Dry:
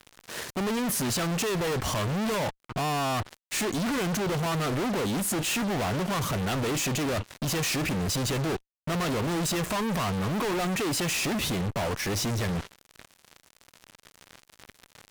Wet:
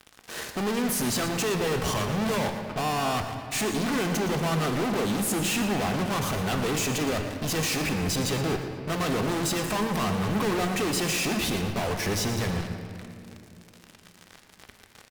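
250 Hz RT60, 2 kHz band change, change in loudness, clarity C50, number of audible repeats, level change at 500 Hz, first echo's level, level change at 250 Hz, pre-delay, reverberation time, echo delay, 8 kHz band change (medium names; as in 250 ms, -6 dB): 3.8 s, +1.5 dB, +1.0 dB, 6.0 dB, 2, +1.5 dB, -11.5 dB, +1.5 dB, 3 ms, 2.8 s, 116 ms, +1.0 dB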